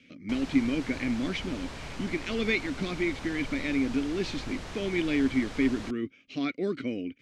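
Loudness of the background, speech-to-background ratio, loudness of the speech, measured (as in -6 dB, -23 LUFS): -41.5 LUFS, 11.0 dB, -30.5 LUFS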